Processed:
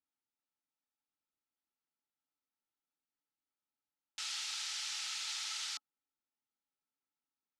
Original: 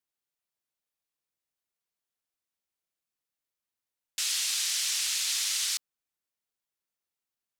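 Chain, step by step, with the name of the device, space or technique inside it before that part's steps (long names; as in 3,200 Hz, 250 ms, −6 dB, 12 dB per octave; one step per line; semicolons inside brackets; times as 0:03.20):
inside a cardboard box (low-pass filter 5,800 Hz 12 dB per octave; hollow resonant body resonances 270/850/1,300 Hz, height 13 dB, ringing for 40 ms)
level −8.5 dB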